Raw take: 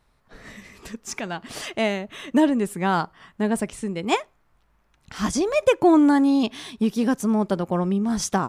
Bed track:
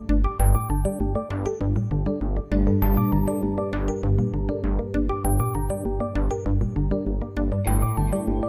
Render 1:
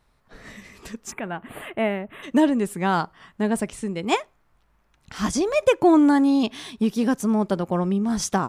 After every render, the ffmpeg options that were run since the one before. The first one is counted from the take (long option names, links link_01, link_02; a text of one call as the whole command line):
ffmpeg -i in.wav -filter_complex "[0:a]asplit=3[link_01][link_02][link_03];[link_01]afade=type=out:start_time=1.1:duration=0.02[link_04];[link_02]asuperstop=centerf=5500:order=4:qfactor=0.63,afade=type=in:start_time=1.1:duration=0.02,afade=type=out:start_time=2.22:duration=0.02[link_05];[link_03]afade=type=in:start_time=2.22:duration=0.02[link_06];[link_04][link_05][link_06]amix=inputs=3:normalize=0" out.wav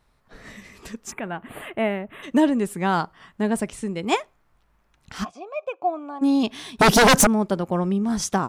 ffmpeg -i in.wav -filter_complex "[0:a]asplit=3[link_01][link_02][link_03];[link_01]afade=type=out:start_time=5.23:duration=0.02[link_04];[link_02]asplit=3[link_05][link_06][link_07];[link_05]bandpass=frequency=730:width_type=q:width=8,volume=0dB[link_08];[link_06]bandpass=frequency=1090:width_type=q:width=8,volume=-6dB[link_09];[link_07]bandpass=frequency=2440:width_type=q:width=8,volume=-9dB[link_10];[link_08][link_09][link_10]amix=inputs=3:normalize=0,afade=type=in:start_time=5.23:duration=0.02,afade=type=out:start_time=6.21:duration=0.02[link_11];[link_03]afade=type=in:start_time=6.21:duration=0.02[link_12];[link_04][link_11][link_12]amix=inputs=3:normalize=0,asettb=1/sr,asplit=3[link_13][link_14][link_15];[link_13]atrim=end=6.794[link_16];[link_14]atrim=start=6.79:end=7.27,asetpts=PTS-STARTPTS,afade=type=in:duration=0.004:curve=qsin,afade=type=out:start_time=0.476:duration=0.004:curve=qsin,aeval=exprs='0.316*sin(PI/2*7.08*val(0)/0.316)':channel_layout=same[link_17];[link_15]atrim=start=7.266[link_18];[link_16][link_17]acrossfade=duration=0.004:curve1=hsin:curve2=qsin[link_19];[link_19][link_18]acrossfade=duration=0.004:curve1=qsin:curve2=hsin" out.wav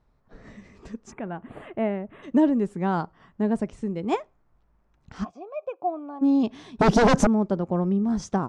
ffmpeg -i in.wav -af "lowpass=frequency=6500:width=0.5412,lowpass=frequency=6500:width=1.3066,equalizer=frequency=3600:width=0.36:gain=-13" out.wav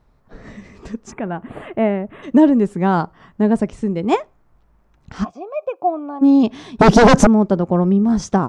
ffmpeg -i in.wav -af "volume=8.5dB,alimiter=limit=-2dB:level=0:latency=1" out.wav